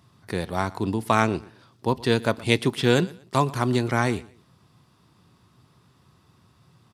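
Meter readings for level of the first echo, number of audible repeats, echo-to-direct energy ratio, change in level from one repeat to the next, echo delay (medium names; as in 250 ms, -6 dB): -21.5 dB, 2, -21.0 dB, -11.0 dB, 119 ms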